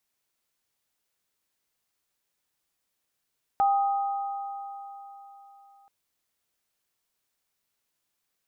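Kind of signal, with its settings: sine partials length 2.28 s, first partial 796 Hz, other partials 1.25 kHz, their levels -11 dB, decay 3.68 s, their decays 3.84 s, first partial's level -18.5 dB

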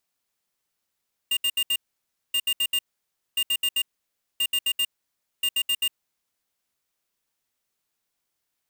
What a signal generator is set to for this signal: beep pattern square 2.81 kHz, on 0.06 s, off 0.07 s, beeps 4, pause 0.58 s, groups 5, -23 dBFS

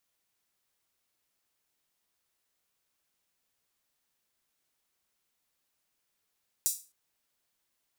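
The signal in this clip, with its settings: open hi-hat length 0.26 s, high-pass 6.9 kHz, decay 0.32 s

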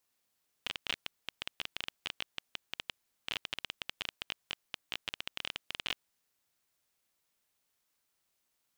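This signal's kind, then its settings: random clicks 15 per s -17.5 dBFS 5.49 s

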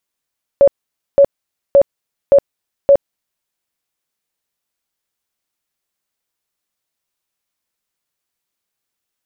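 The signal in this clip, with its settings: tone bursts 560 Hz, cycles 37, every 0.57 s, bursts 5, -4 dBFS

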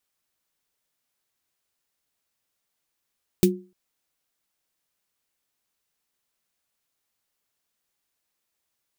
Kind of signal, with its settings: snare drum length 0.30 s, tones 190 Hz, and 360 Hz, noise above 2.2 kHz, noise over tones -7.5 dB, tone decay 0.33 s, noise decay 0.10 s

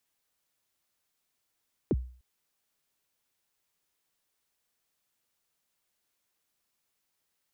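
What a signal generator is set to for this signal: kick drum length 0.30 s, from 470 Hz, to 62 Hz, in 39 ms, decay 0.44 s, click off, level -20 dB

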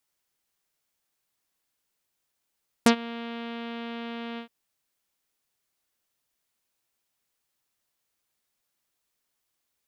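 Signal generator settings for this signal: synth note saw A#3 24 dB/octave, low-pass 3.4 kHz, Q 1.9, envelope 2 oct, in 0.05 s, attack 2 ms, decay 0.09 s, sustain -22 dB, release 0.10 s, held 1.52 s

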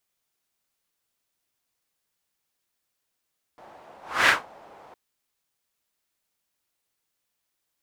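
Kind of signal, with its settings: whoosh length 1.36 s, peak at 0.70 s, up 0.29 s, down 0.19 s, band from 750 Hz, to 1.8 kHz, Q 2.2, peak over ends 32 dB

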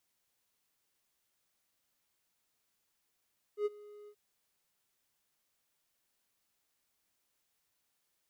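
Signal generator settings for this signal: ADSR triangle 416 Hz, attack 87 ms, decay 28 ms, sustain -22 dB, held 0.51 s, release 69 ms -25.5 dBFS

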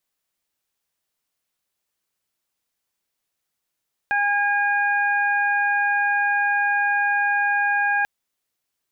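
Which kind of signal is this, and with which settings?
steady additive tone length 3.94 s, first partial 815 Hz, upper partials 3/-7.5 dB, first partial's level -22.5 dB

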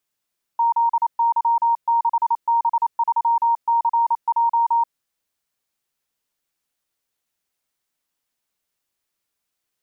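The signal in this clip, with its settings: Morse "ZY6B3CJ" 28 wpm 931 Hz -14.5 dBFS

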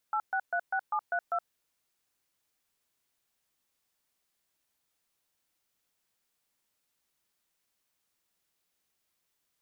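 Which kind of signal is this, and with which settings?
DTMF "8636732", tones 70 ms, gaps 128 ms, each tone -29.5 dBFS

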